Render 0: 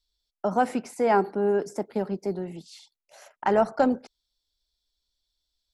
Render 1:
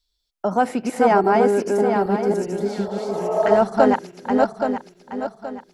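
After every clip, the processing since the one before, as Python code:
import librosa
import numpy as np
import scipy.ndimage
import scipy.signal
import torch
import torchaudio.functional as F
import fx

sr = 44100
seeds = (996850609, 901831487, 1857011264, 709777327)

y = fx.reverse_delay_fb(x, sr, ms=412, feedback_pct=58, wet_db=-1)
y = fx.spec_repair(y, sr, seeds[0], start_s=2.61, length_s=0.92, low_hz=430.0, high_hz=1300.0, source='both')
y = y * librosa.db_to_amplitude(4.0)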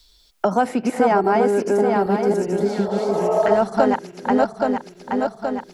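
y = fx.band_squash(x, sr, depth_pct=70)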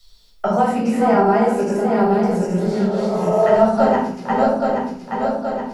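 y = fx.room_shoebox(x, sr, seeds[1], volume_m3=880.0, walls='furnished', distance_m=6.5)
y = y * librosa.db_to_amplitude(-6.5)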